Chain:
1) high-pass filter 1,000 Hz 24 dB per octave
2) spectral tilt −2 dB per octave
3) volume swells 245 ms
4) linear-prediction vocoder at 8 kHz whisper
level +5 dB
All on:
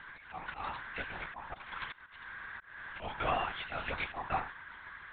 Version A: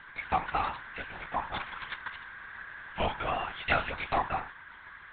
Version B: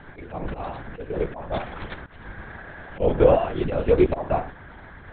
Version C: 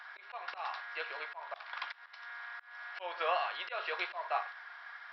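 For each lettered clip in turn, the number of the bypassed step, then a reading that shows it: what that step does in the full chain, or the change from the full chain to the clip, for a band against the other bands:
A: 3, change in crest factor +3.0 dB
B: 1, 2 kHz band −18.0 dB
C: 4, 250 Hz band −14.5 dB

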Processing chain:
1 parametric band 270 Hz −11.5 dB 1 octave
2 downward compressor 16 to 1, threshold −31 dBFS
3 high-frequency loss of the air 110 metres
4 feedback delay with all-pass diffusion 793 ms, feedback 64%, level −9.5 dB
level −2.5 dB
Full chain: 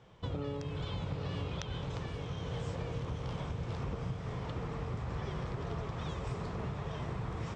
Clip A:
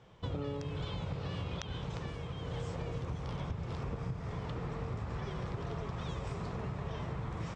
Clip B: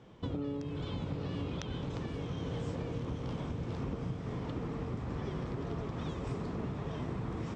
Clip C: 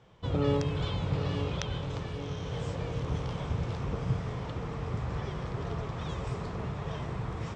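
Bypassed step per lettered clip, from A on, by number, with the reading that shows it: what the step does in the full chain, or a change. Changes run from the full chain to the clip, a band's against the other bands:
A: 4, echo-to-direct ratio −7.0 dB to none audible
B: 1, 250 Hz band +6.0 dB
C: 2, average gain reduction 3.5 dB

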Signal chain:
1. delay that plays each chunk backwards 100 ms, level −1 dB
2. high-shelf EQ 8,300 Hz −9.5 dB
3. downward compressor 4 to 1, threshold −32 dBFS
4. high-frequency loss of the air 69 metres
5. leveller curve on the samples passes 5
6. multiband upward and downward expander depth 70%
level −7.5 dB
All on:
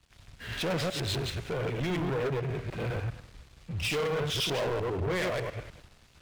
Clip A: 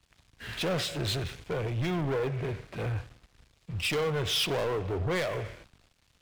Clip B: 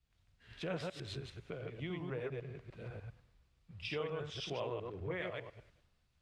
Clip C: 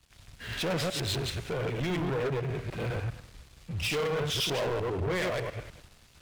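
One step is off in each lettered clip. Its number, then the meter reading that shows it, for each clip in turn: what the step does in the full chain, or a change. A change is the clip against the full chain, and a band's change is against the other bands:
1, 4 kHz band +2.0 dB
5, change in crest factor +3.0 dB
2, 8 kHz band +2.0 dB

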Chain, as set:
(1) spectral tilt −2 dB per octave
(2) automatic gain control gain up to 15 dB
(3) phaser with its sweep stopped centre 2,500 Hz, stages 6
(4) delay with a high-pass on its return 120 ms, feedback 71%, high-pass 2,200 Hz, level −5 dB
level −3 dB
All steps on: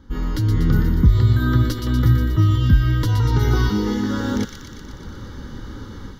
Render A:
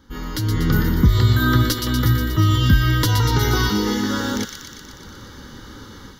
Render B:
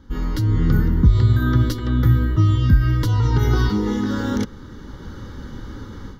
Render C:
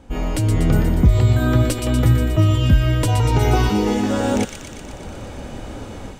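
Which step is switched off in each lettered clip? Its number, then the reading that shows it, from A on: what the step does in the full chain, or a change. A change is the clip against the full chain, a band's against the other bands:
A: 1, 125 Hz band −7.0 dB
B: 4, echo-to-direct ratio −7.5 dB to none audible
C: 3, change in momentary loudness spread −2 LU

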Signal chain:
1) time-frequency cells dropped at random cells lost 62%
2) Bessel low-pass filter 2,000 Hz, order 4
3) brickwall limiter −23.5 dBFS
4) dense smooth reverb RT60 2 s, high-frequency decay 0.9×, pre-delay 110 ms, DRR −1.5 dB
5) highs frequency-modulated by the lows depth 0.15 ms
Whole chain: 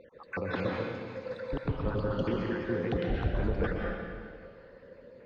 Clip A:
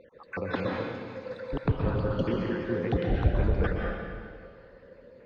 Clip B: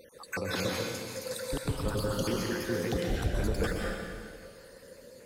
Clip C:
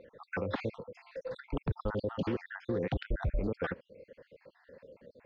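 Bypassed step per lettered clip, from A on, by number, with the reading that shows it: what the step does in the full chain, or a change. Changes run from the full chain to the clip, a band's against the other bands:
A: 3, change in crest factor +3.0 dB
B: 2, 4 kHz band +10.5 dB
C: 4, change in integrated loudness −3.5 LU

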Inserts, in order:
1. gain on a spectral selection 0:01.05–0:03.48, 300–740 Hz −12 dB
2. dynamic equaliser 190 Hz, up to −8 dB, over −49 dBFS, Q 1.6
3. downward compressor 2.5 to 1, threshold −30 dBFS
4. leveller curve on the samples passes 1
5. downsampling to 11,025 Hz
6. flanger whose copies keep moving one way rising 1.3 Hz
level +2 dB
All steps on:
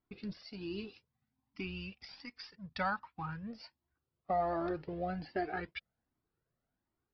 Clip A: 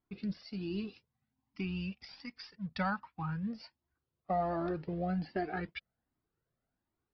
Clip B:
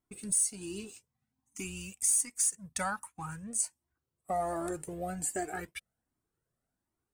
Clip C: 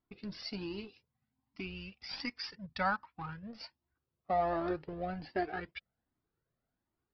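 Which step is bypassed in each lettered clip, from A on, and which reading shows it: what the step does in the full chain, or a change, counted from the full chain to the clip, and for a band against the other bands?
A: 2, 125 Hz band +6.5 dB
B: 5, change in momentary loudness spread +1 LU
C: 3, 4 kHz band +4.0 dB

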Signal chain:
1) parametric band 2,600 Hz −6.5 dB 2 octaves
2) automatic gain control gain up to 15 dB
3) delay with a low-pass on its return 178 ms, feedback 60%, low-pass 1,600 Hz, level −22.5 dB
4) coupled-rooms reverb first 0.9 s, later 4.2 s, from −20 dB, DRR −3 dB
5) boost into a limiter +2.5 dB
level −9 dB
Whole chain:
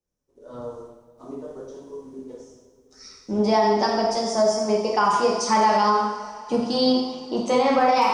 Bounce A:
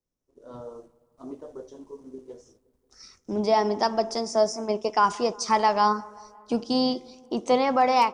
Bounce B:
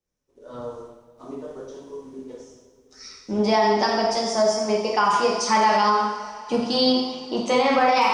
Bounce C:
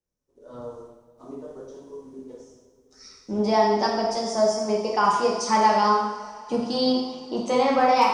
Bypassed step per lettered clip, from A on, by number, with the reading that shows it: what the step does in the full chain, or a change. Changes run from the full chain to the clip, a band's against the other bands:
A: 4, change in momentary loudness spread +2 LU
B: 1, 2 kHz band +3.5 dB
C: 5, change in crest factor +4.0 dB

